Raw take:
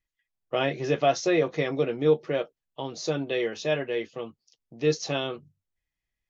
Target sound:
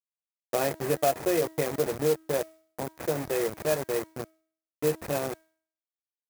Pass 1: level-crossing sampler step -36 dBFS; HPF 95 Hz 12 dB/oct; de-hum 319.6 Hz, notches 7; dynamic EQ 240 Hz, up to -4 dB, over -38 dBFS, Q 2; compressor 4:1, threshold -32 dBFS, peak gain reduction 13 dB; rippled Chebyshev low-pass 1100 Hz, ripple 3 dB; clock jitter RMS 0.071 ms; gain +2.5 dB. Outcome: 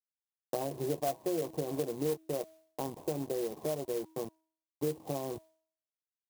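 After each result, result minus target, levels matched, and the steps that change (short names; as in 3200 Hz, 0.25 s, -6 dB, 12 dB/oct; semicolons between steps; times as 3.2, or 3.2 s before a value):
2000 Hz band -9.0 dB; compressor: peak gain reduction +7.5 dB; level-crossing sampler: distortion -8 dB
change: compressor 4:1, threshold -22.5 dBFS, peak gain reduction 6 dB; change: rippled Chebyshev low-pass 2600 Hz, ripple 3 dB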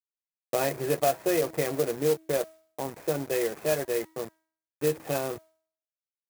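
level-crossing sampler: distortion -8 dB
change: level-crossing sampler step -27.5 dBFS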